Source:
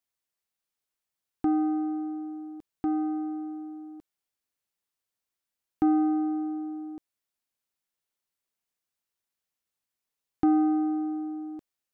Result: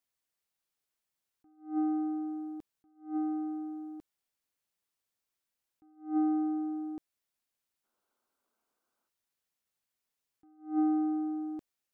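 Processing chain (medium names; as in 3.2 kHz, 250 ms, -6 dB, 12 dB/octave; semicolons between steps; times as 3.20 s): time-frequency box 7.84–9.09 s, 200–1600 Hz +12 dB; attacks held to a fixed rise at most 170 dB/s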